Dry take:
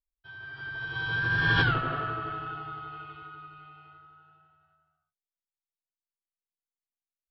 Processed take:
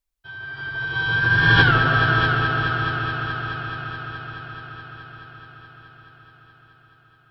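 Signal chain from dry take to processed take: multi-head echo 0.213 s, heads all three, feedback 68%, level -11 dB; gain +8.5 dB

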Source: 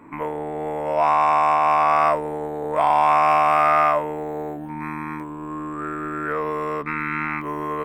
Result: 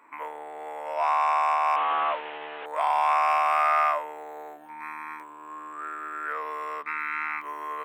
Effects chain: 1.76–2.66 delta modulation 16 kbps, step -24 dBFS; HPF 830 Hz 12 dB/oct; gain -3.5 dB

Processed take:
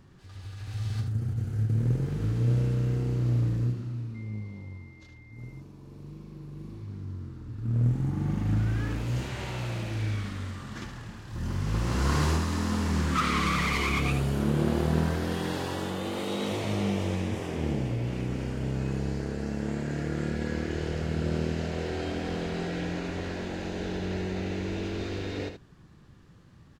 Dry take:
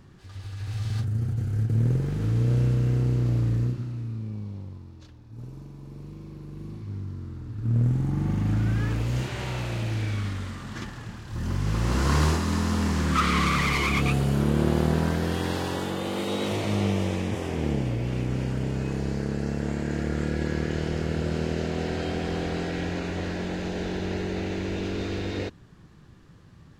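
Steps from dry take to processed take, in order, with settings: 4.14–5.52 whine 2100 Hz -47 dBFS; echo 75 ms -8 dB; gain -3.5 dB

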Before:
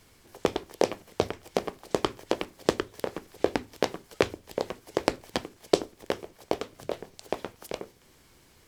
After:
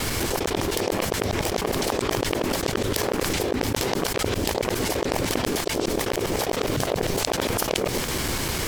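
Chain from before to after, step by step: local time reversal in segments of 0.101 s; fast leveller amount 100%; gain -7.5 dB

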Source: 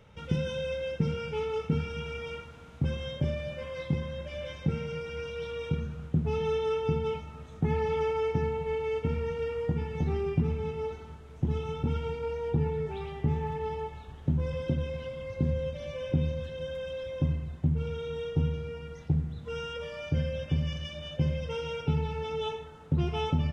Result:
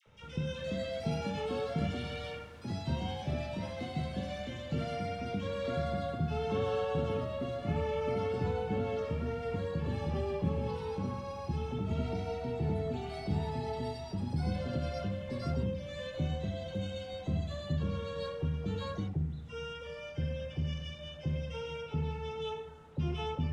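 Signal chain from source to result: de-hum 47.22 Hz, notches 35; in parallel at -8 dB: soft clip -28 dBFS, distortion -11 dB; on the sum: echoes that change speed 0.408 s, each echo +4 st, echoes 2; dispersion lows, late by 64 ms, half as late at 1100 Hz; gain -7.5 dB

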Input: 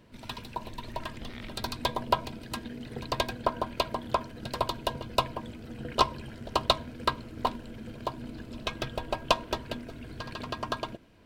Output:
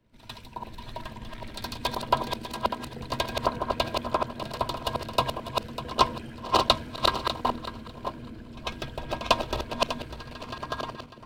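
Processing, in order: regenerating reverse delay 0.299 s, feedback 45%, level -2.5 dB; pre-echo 97 ms -14 dB; three-band expander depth 40%

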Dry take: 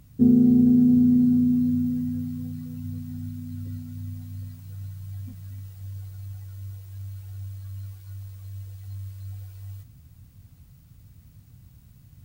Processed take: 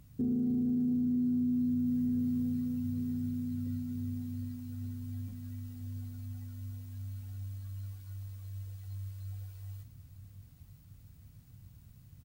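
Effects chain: on a send: feedback echo 0.923 s, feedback 59%, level -16 dB; on the sum: limiter -20.5 dBFS, peak gain reduction 12 dB; gain -5 dB

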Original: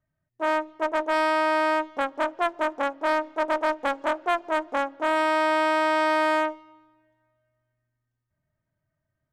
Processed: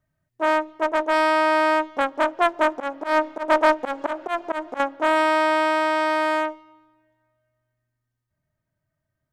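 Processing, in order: 2.65–4.8 auto swell 0.143 s; vocal rider within 5 dB 2 s; gain +3.5 dB

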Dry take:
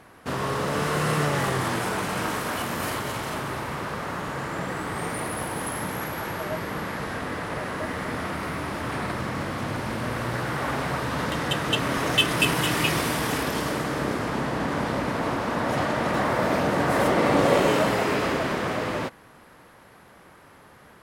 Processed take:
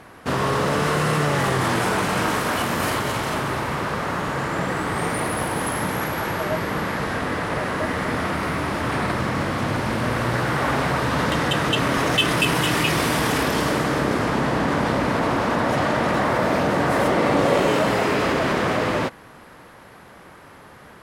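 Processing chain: high shelf 11000 Hz -5.5 dB; in parallel at -1.5 dB: negative-ratio compressor -27 dBFS

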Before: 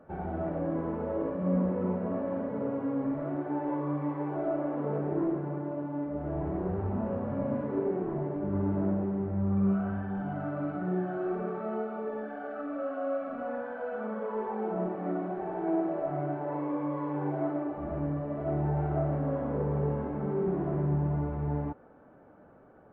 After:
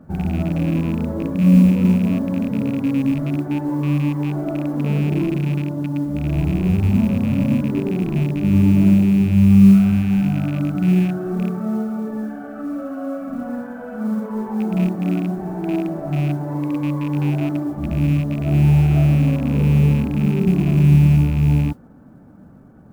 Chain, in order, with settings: rattling part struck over -35 dBFS, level -29 dBFS; resonant low shelf 310 Hz +11.5 dB, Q 1.5; modulation noise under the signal 34 dB; gain +3.5 dB

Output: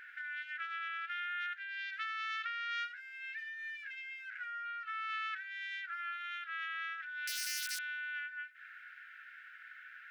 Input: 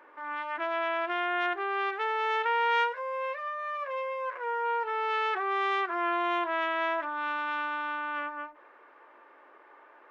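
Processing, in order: 1.67–2.92 dynamic EQ 4900 Hz, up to +8 dB, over -50 dBFS, Q 1.4; compressor 5:1, threshold -43 dBFS, peak gain reduction 19 dB; 7.27–7.79 wrapped overs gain 37.5 dB; brick-wall FIR high-pass 1300 Hz; gain +9 dB

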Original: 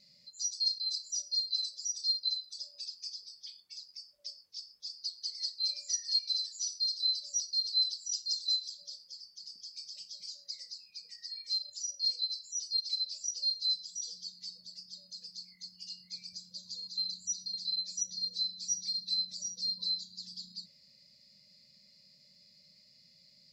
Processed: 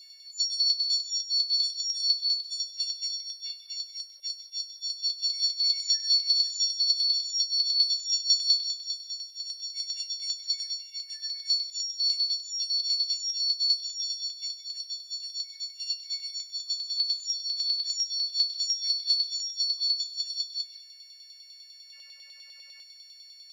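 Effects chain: frequency quantiser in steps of 4 st; spectral gain 21.93–22.83, 280–3000 Hz +12 dB; LFO high-pass saw down 10 Hz 790–4500 Hz; on a send: reverb RT60 0.45 s, pre-delay 0.103 s, DRR 11 dB; on the sum: gain -1 dB

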